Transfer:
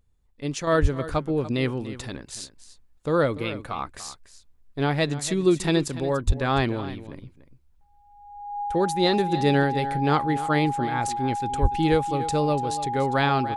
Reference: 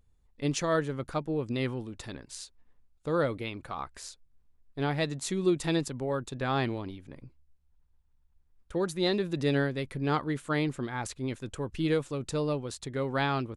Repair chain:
notch filter 820 Hz, Q 30
0:00.81–0:00.93: high-pass filter 140 Hz 24 dB per octave
0:06.26–0:06.38: high-pass filter 140 Hz 24 dB per octave
0:11.61–0:11.73: high-pass filter 140 Hz 24 dB per octave
echo removal 290 ms −14.5 dB
0:00.67: level correction −6 dB

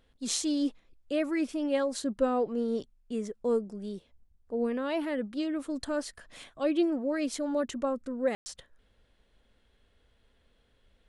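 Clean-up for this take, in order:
ambience match 0:08.35–0:08.46

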